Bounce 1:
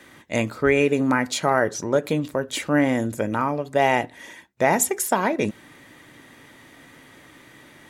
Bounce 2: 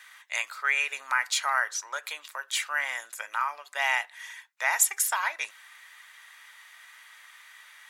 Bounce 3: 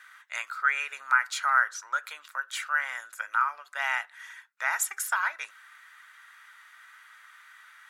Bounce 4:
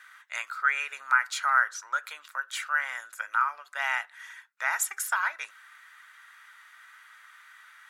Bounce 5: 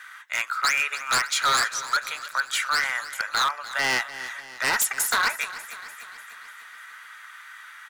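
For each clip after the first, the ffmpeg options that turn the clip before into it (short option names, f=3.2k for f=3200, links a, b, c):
-af "highpass=f=1.1k:w=0.5412,highpass=f=1.1k:w=1.3066"
-af "equalizer=f=1.4k:w=2.6:g=14.5,volume=-7dB"
-af anull
-af "aeval=exprs='0.0631*(abs(mod(val(0)/0.0631+3,4)-2)-1)':c=same,aecho=1:1:296|592|888|1184|1480|1776:0.178|0.101|0.0578|0.0329|0.0188|0.0107,volume=8.5dB"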